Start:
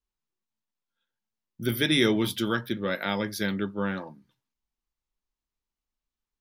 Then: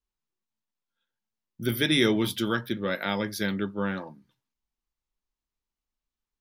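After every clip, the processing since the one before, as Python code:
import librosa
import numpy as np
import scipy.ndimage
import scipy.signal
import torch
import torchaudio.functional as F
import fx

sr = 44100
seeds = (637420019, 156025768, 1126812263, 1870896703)

y = x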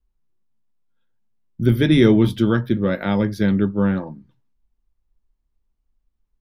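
y = fx.tilt_eq(x, sr, slope=-3.5)
y = y * 10.0 ** (4.0 / 20.0)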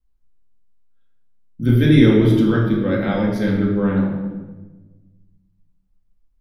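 y = fx.room_shoebox(x, sr, seeds[0], volume_m3=780.0, walls='mixed', distance_m=2.1)
y = y * 10.0 ** (-4.0 / 20.0)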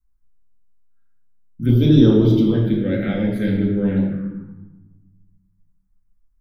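y = fx.env_phaser(x, sr, low_hz=550.0, high_hz=2100.0, full_db=-9.0)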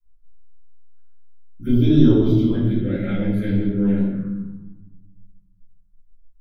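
y = fx.room_shoebox(x, sr, seeds[1], volume_m3=150.0, walls='furnished', distance_m=3.1)
y = y * 10.0 ** (-10.5 / 20.0)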